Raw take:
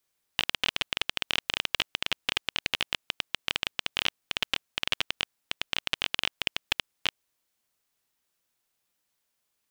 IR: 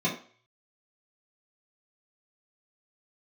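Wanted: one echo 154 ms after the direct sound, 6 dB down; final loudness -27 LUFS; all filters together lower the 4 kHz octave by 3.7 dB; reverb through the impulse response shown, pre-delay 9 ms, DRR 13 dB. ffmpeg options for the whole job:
-filter_complex "[0:a]equalizer=f=4000:t=o:g=-5.5,aecho=1:1:154:0.501,asplit=2[s0][s1];[1:a]atrim=start_sample=2205,adelay=9[s2];[s1][s2]afir=irnorm=-1:irlink=0,volume=0.0708[s3];[s0][s3]amix=inputs=2:normalize=0,volume=1.78"

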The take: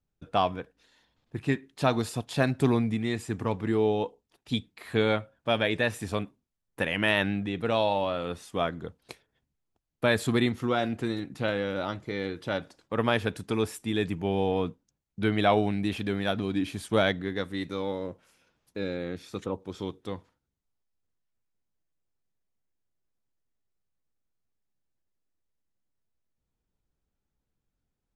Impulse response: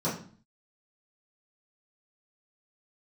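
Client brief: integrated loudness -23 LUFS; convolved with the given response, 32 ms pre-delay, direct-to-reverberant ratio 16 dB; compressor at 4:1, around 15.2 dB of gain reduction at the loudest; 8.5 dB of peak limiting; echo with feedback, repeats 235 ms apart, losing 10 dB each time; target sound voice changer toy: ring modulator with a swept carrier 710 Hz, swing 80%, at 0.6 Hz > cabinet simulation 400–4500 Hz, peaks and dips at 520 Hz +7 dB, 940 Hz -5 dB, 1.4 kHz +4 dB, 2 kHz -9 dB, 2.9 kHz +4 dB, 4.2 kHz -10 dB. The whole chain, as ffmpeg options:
-filter_complex "[0:a]acompressor=threshold=0.0126:ratio=4,alimiter=level_in=2.24:limit=0.0631:level=0:latency=1,volume=0.447,aecho=1:1:235|470|705|940:0.316|0.101|0.0324|0.0104,asplit=2[s0][s1];[1:a]atrim=start_sample=2205,adelay=32[s2];[s1][s2]afir=irnorm=-1:irlink=0,volume=0.0562[s3];[s0][s3]amix=inputs=2:normalize=0,aeval=exprs='val(0)*sin(2*PI*710*n/s+710*0.8/0.6*sin(2*PI*0.6*n/s))':c=same,highpass=400,equalizer=f=520:t=q:w=4:g=7,equalizer=f=940:t=q:w=4:g=-5,equalizer=f=1400:t=q:w=4:g=4,equalizer=f=2000:t=q:w=4:g=-9,equalizer=f=2900:t=q:w=4:g=4,equalizer=f=4200:t=q:w=4:g=-10,lowpass=f=4500:w=0.5412,lowpass=f=4500:w=1.3066,volume=15"

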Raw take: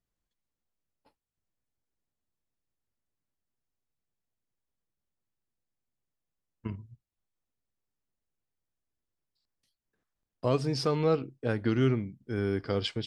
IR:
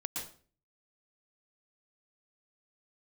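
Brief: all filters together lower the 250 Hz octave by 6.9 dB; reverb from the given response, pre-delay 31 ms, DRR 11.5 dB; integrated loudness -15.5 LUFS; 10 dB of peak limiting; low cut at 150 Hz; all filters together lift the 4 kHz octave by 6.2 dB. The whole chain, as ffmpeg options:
-filter_complex "[0:a]highpass=150,equalizer=f=250:t=o:g=-8.5,equalizer=f=4000:t=o:g=8.5,alimiter=limit=0.0794:level=0:latency=1,asplit=2[s0][s1];[1:a]atrim=start_sample=2205,adelay=31[s2];[s1][s2]afir=irnorm=-1:irlink=0,volume=0.224[s3];[s0][s3]amix=inputs=2:normalize=0,volume=9.44"

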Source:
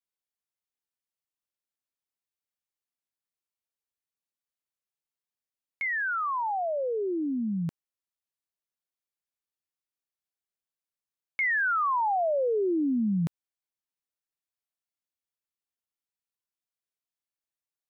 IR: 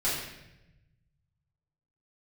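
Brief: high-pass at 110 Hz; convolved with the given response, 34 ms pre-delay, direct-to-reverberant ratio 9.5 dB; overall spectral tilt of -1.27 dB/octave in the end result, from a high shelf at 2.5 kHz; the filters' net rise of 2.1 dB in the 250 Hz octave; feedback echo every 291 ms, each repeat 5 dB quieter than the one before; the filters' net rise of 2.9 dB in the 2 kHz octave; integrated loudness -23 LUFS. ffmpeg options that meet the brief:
-filter_complex "[0:a]highpass=110,equalizer=f=250:t=o:g=3,equalizer=f=2000:t=o:g=5.5,highshelf=f=2500:g=-5,aecho=1:1:291|582|873|1164|1455|1746|2037:0.562|0.315|0.176|0.0988|0.0553|0.031|0.0173,asplit=2[s0][s1];[1:a]atrim=start_sample=2205,adelay=34[s2];[s1][s2]afir=irnorm=-1:irlink=0,volume=0.112[s3];[s0][s3]amix=inputs=2:normalize=0,volume=1.26"

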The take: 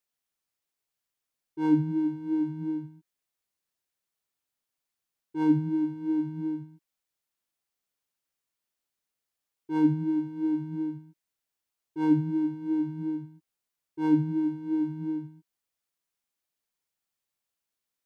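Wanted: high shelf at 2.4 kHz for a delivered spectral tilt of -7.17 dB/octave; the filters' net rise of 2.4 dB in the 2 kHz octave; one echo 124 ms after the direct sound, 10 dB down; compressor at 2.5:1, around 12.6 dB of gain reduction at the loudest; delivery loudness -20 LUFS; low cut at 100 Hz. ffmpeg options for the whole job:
-af "highpass=100,equalizer=f=2000:t=o:g=5.5,highshelf=f=2400:g=-4.5,acompressor=threshold=0.0141:ratio=2.5,aecho=1:1:124:0.316,volume=7.94"

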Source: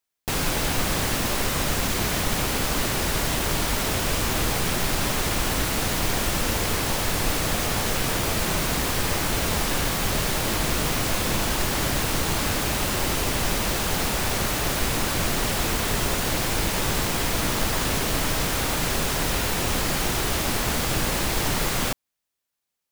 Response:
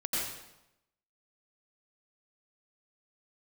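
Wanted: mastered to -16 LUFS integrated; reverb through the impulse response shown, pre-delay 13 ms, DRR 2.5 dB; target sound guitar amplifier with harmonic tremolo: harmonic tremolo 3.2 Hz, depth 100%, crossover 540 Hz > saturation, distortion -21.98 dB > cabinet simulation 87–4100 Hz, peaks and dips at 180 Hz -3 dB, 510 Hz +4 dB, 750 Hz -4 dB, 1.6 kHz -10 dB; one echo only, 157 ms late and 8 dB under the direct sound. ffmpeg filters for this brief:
-filter_complex "[0:a]aecho=1:1:157:0.398,asplit=2[s0][s1];[1:a]atrim=start_sample=2205,adelay=13[s2];[s1][s2]afir=irnorm=-1:irlink=0,volume=0.355[s3];[s0][s3]amix=inputs=2:normalize=0,acrossover=split=540[s4][s5];[s4]aeval=exprs='val(0)*(1-1/2+1/2*cos(2*PI*3.2*n/s))':c=same[s6];[s5]aeval=exprs='val(0)*(1-1/2-1/2*cos(2*PI*3.2*n/s))':c=same[s7];[s6][s7]amix=inputs=2:normalize=0,asoftclip=threshold=0.15,highpass=87,equalizer=f=180:t=q:w=4:g=-3,equalizer=f=510:t=q:w=4:g=4,equalizer=f=750:t=q:w=4:g=-4,equalizer=f=1600:t=q:w=4:g=-10,lowpass=f=4100:w=0.5412,lowpass=f=4100:w=1.3066,volume=5.31"

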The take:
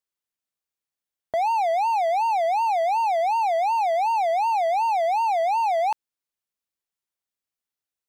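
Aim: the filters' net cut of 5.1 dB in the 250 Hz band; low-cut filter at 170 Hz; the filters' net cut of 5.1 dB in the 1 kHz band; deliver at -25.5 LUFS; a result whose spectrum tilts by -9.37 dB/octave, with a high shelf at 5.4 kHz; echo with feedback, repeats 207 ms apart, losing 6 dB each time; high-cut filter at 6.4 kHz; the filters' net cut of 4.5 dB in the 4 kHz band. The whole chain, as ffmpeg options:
-af "highpass=170,lowpass=6400,equalizer=f=250:t=o:g=-5.5,equalizer=f=1000:t=o:g=-6.5,equalizer=f=4000:t=o:g=-8,highshelf=f=5400:g=8.5,aecho=1:1:207|414|621|828|1035|1242:0.501|0.251|0.125|0.0626|0.0313|0.0157"

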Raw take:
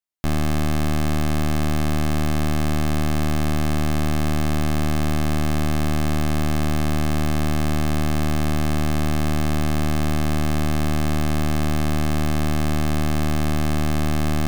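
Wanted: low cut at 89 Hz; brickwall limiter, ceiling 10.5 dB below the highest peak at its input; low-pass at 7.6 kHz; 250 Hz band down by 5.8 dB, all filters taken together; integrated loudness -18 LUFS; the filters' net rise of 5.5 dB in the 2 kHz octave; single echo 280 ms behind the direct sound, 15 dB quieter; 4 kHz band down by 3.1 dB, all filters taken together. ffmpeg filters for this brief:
-af "highpass=89,lowpass=7600,equalizer=f=250:t=o:g=-8,equalizer=f=2000:t=o:g=8.5,equalizer=f=4000:t=o:g=-7,alimiter=limit=0.075:level=0:latency=1,aecho=1:1:280:0.178,volume=7.5"

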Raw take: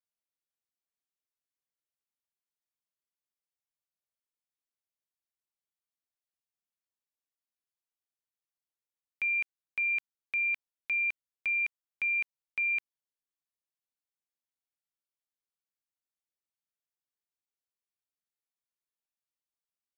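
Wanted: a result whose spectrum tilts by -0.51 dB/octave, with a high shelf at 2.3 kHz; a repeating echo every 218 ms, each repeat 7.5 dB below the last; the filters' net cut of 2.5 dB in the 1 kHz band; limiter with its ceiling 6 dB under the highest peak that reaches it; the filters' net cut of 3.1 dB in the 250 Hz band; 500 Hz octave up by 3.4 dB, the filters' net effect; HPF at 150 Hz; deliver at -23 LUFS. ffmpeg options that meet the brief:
-af "highpass=150,equalizer=f=250:t=o:g=-6,equalizer=f=500:t=o:g=7,equalizer=f=1000:t=o:g=-4,highshelf=f=2300:g=-4,alimiter=level_in=2.82:limit=0.0631:level=0:latency=1,volume=0.355,aecho=1:1:218|436|654|872|1090:0.422|0.177|0.0744|0.0312|0.0131,volume=4.73"

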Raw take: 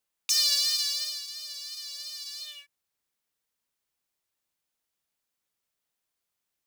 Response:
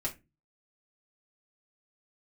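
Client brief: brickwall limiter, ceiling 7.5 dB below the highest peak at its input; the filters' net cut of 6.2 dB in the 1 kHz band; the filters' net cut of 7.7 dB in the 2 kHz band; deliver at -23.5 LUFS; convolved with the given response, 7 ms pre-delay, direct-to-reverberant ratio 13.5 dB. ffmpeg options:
-filter_complex "[0:a]equalizer=f=1000:t=o:g=-4.5,equalizer=f=2000:t=o:g=-8.5,alimiter=limit=0.112:level=0:latency=1,asplit=2[s0][s1];[1:a]atrim=start_sample=2205,adelay=7[s2];[s1][s2]afir=irnorm=-1:irlink=0,volume=0.15[s3];[s0][s3]amix=inputs=2:normalize=0,volume=2.24"

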